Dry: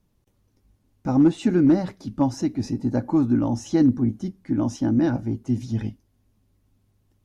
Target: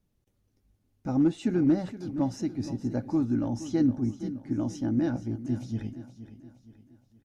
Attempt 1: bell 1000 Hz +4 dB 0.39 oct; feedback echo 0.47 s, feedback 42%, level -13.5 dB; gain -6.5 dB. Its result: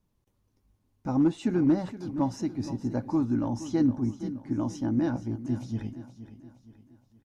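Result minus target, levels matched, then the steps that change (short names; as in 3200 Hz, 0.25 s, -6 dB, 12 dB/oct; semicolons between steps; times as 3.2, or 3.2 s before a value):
1000 Hz band +4.0 dB
change: bell 1000 Hz -5.5 dB 0.39 oct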